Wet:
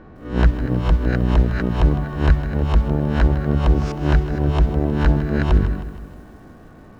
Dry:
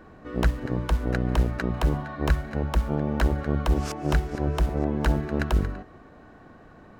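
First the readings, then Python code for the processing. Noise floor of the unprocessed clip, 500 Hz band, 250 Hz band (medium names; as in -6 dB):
-50 dBFS, +4.5 dB, +6.5 dB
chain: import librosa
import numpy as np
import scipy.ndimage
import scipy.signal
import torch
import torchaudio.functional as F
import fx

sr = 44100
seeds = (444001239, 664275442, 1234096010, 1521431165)

y = fx.spec_swells(x, sr, rise_s=0.38)
y = scipy.signal.sosfilt(scipy.signal.butter(2, 4700.0, 'lowpass', fs=sr, output='sos'), y)
y = fx.low_shelf(y, sr, hz=390.0, db=7.0)
y = fx.echo_crushed(y, sr, ms=157, feedback_pct=55, bits=8, wet_db=-13.0)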